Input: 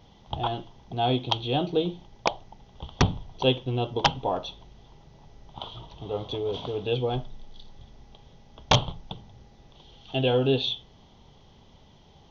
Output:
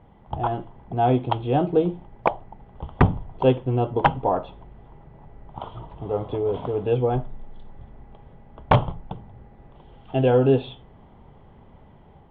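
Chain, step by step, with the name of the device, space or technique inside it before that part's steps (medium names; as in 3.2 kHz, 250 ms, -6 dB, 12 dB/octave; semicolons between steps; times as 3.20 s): action camera in a waterproof case (low-pass 2 kHz 24 dB/octave; level rider gain up to 3 dB; trim +2.5 dB; AAC 64 kbps 44.1 kHz)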